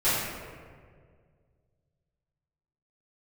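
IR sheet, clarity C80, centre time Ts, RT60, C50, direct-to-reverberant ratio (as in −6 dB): 1.0 dB, 108 ms, 1.9 s, −1.5 dB, −15.0 dB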